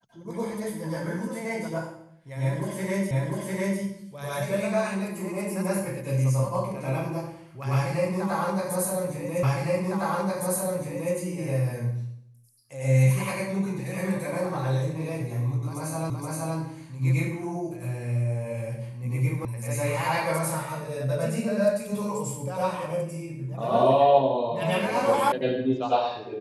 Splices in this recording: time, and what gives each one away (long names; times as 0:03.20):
0:03.11: the same again, the last 0.7 s
0:09.43: the same again, the last 1.71 s
0:16.10: the same again, the last 0.47 s
0:19.45: cut off before it has died away
0:25.32: cut off before it has died away